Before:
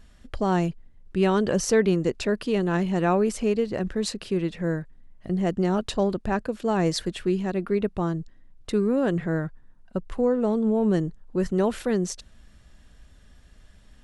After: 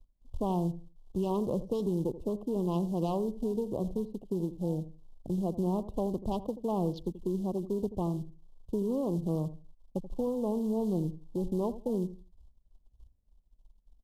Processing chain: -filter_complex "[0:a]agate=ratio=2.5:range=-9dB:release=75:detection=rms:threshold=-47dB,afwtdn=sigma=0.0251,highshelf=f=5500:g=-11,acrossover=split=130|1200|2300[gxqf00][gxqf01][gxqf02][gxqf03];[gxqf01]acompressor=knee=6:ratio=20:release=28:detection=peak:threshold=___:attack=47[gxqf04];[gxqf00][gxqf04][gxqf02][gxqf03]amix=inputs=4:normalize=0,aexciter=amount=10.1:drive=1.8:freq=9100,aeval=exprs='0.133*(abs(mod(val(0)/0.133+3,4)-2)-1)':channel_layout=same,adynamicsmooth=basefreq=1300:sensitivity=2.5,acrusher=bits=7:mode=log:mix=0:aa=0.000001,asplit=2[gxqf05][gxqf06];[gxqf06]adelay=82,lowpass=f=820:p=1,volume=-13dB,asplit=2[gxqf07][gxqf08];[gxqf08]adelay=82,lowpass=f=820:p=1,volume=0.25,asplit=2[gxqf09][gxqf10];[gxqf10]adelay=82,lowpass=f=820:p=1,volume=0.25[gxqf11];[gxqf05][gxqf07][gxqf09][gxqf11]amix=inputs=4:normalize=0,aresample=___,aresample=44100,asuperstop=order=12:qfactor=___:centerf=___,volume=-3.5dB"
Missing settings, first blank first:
-31dB, 32000, 0.99, 1800